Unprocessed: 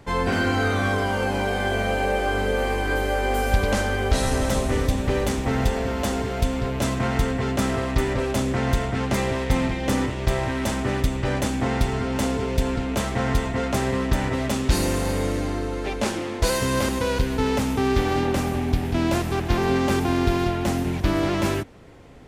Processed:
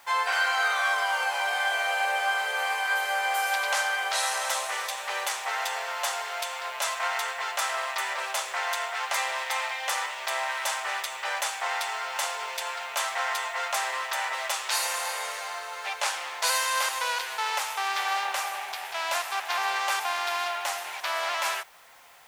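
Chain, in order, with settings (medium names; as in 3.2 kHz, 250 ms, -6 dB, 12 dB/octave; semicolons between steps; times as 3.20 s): inverse Chebyshev high-pass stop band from 300 Hz, stop band 50 dB; in parallel at -11.5 dB: word length cut 8-bit, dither triangular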